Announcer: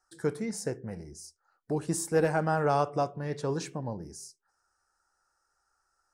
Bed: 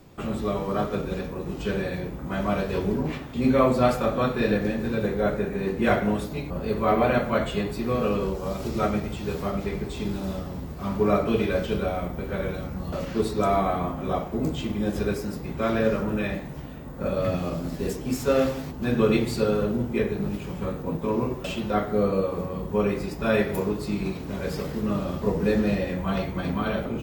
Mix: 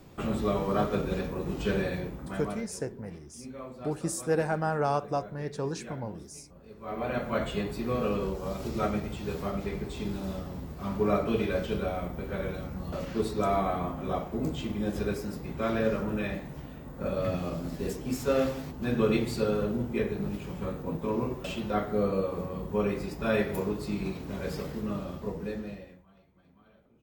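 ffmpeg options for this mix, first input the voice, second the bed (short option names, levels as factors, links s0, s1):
-filter_complex "[0:a]adelay=2150,volume=0.841[s0];[1:a]volume=7.08,afade=t=out:st=1.79:d=0.92:silence=0.0841395,afade=t=in:st=6.79:d=0.66:silence=0.125893,afade=t=out:st=24.51:d=1.55:silence=0.0316228[s1];[s0][s1]amix=inputs=2:normalize=0"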